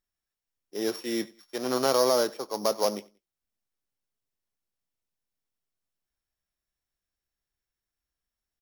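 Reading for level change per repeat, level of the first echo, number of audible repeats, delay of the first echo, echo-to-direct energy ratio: -10.0 dB, -23.5 dB, 2, 92 ms, -23.0 dB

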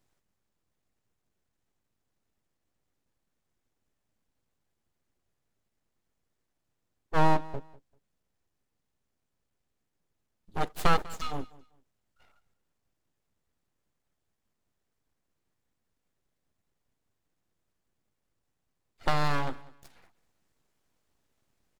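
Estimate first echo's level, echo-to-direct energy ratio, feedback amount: -21.0 dB, -21.0 dB, 23%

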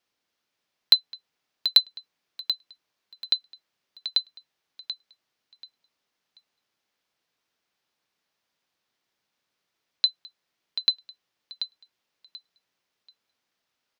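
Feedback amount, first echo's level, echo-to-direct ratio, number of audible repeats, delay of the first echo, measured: 24%, -10.0 dB, -9.5 dB, 3, 0.735 s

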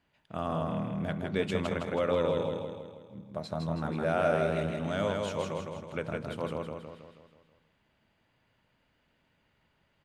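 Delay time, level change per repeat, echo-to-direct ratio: 0.161 s, -5.5 dB, -1.5 dB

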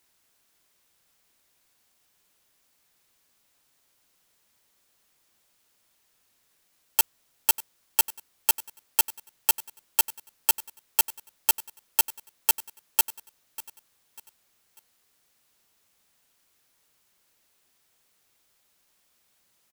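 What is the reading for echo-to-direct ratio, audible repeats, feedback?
-17.0 dB, 3, 37%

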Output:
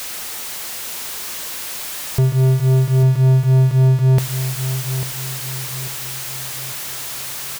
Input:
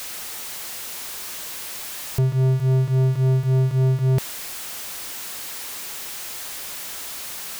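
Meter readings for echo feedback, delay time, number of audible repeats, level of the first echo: 41%, 0.846 s, 4, -10.5 dB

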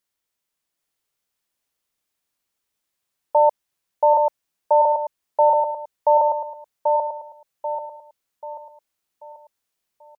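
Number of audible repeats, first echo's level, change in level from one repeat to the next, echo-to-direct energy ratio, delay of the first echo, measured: 5, -3.5 dB, -7.5 dB, -2.5 dB, 0.787 s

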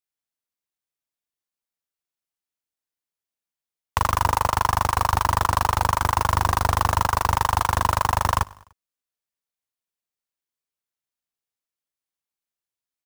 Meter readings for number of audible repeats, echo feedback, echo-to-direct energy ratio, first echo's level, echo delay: 3, 54%, -22.5 dB, -24.0 dB, 99 ms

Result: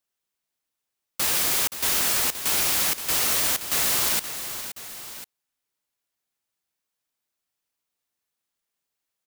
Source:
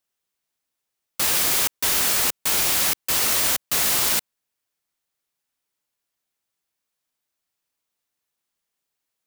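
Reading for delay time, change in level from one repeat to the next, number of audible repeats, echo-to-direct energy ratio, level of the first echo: 0.524 s, -4.5 dB, 2, -9.5 dB, -11.0 dB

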